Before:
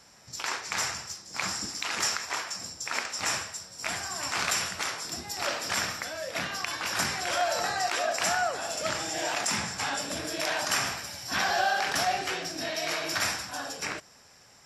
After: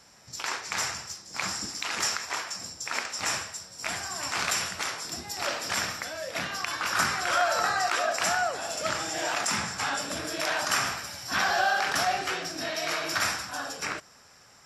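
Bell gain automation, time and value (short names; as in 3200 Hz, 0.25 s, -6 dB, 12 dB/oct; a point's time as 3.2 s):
bell 1300 Hz 0.56 oct
6.46 s +0.5 dB
7.01 s +10 dB
7.78 s +10 dB
8.6 s -1 dB
8.99 s +5 dB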